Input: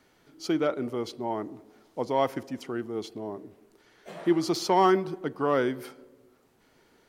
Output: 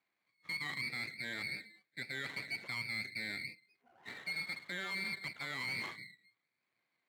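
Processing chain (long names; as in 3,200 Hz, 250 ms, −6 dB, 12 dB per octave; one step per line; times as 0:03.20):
noise reduction from a noise print of the clip's start 24 dB
voice inversion scrambler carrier 2,500 Hz
half-wave rectification
high-pass filter 120 Hz 24 dB per octave
reversed playback
downward compressor 10 to 1, threshold −40 dBFS, peak gain reduction 19.5 dB
reversed playback
brickwall limiter −37 dBFS, peak gain reduction 9.5 dB
level +7 dB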